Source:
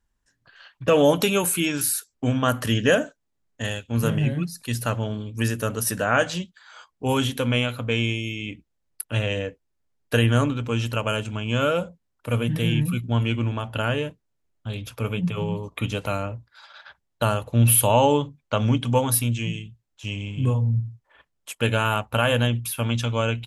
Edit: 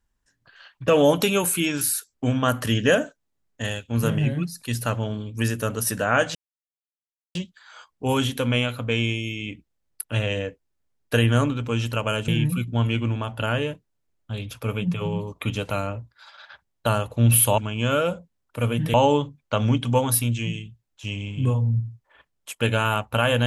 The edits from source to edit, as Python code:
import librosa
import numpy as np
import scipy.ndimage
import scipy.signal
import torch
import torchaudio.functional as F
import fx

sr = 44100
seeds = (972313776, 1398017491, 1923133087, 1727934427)

y = fx.edit(x, sr, fx.insert_silence(at_s=6.35, length_s=1.0),
    fx.move(start_s=11.28, length_s=1.36, to_s=17.94), tone=tone)